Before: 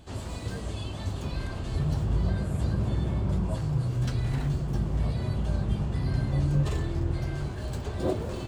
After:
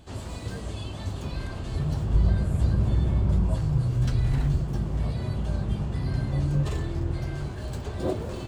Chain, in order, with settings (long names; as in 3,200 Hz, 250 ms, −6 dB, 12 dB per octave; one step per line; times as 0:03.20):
0:02.14–0:04.64: low-shelf EQ 82 Hz +10 dB